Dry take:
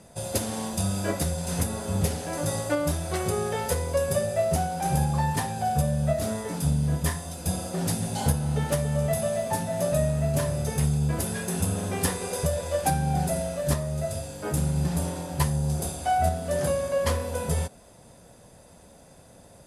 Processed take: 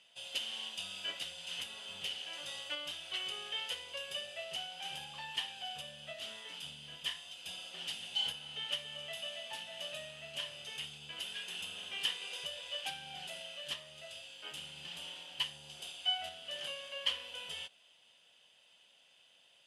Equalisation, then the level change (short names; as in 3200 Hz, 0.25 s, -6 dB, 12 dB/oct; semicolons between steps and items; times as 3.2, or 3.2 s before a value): band-pass 3000 Hz, Q 16; +14.5 dB